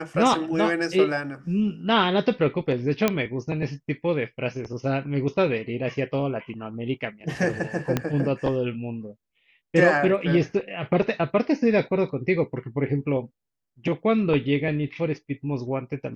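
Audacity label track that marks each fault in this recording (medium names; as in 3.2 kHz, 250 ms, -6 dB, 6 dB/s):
3.080000	3.080000	pop -6 dBFS
7.970000	7.970000	pop -9 dBFS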